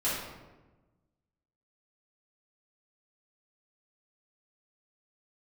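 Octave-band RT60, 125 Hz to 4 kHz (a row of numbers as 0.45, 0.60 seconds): 1.6, 1.5, 1.3, 1.1, 0.90, 0.70 seconds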